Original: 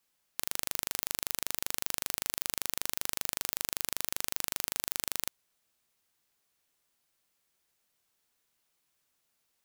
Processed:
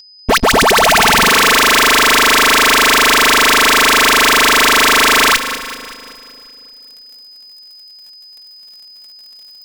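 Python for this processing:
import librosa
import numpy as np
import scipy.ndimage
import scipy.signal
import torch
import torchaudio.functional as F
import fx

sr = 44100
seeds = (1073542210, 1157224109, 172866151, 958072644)

p1 = fx.tape_start_head(x, sr, length_s=1.28)
p2 = fx.high_shelf(p1, sr, hz=7000.0, db=12.0)
p3 = fx.hum_notches(p2, sr, base_hz=60, count=5)
p4 = fx.dispersion(p3, sr, late='highs', ms=84.0, hz=870.0)
p5 = fx.fuzz(p4, sr, gain_db=57.0, gate_db=-59.0)
p6 = p5 + 10.0 ** (-36.0 / 20.0) * np.sin(2.0 * np.pi * 5000.0 * np.arange(len(p5)) / sr)
p7 = p6 + 0.62 * np.pad(p6, (int(4.5 * sr / 1000.0), 0))[:len(p6)]
p8 = p7 + fx.echo_split(p7, sr, split_hz=720.0, low_ms=274, high_ms=191, feedback_pct=52, wet_db=-11.5, dry=0)
y = F.gain(torch.from_numpy(p8), 3.0).numpy()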